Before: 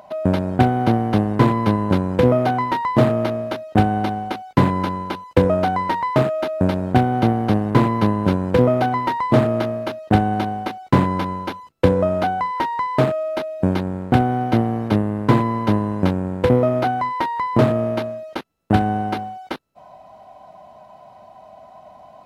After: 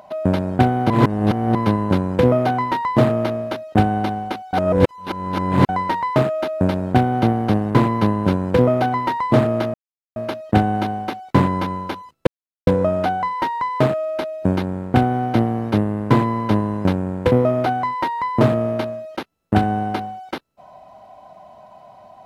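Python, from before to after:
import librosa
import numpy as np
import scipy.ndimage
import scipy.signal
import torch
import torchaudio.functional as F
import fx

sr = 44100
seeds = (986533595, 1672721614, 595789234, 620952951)

y = fx.edit(x, sr, fx.reverse_span(start_s=0.9, length_s=0.65),
    fx.reverse_span(start_s=4.53, length_s=1.16),
    fx.insert_silence(at_s=9.74, length_s=0.42),
    fx.insert_silence(at_s=11.85, length_s=0.4), tone=tone)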